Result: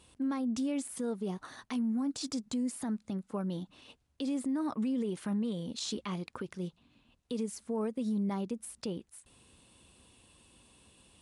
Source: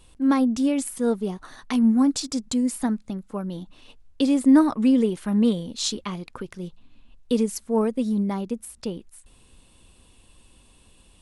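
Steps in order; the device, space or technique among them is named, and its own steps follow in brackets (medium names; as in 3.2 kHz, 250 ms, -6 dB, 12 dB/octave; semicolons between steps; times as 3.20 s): podcast mastering chain (high-pass 84 Hz 12 dB/octave; de-esser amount 60%; compression 3:1, threshold -25 dBFS, peak gain reduction 10.5 dB; peak limiter -23.5 dBFS, peak gain reduction 10.5 dB; trim -3 dB; MP3 112 kbps 24 kHz)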